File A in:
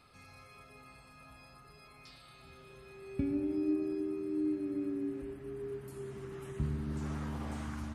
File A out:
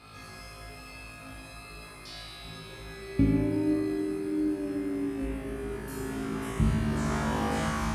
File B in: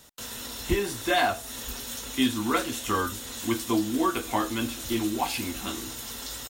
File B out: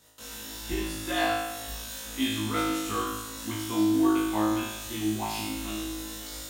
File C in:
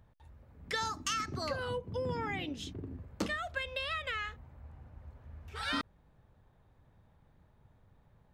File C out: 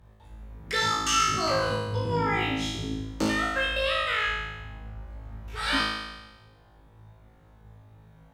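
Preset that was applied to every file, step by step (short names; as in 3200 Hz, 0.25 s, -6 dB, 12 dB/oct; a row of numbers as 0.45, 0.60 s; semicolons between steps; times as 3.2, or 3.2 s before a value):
added harmonics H 3 -17 dB, 5 -29 dB, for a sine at -10.5 dBFS; flutter echo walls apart 3.2 m, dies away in 1.1 s; normalise peaks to -12 dBFS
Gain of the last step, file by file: +10.5, -6.5, +6.5 dB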